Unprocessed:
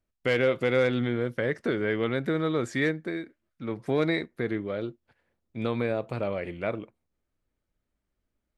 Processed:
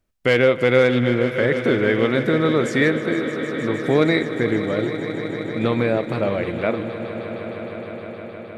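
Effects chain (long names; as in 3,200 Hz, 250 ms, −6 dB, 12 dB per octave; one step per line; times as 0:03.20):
echo that builds up and dies away 155 ms, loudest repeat 5, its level −14.5 dB
level +8 dB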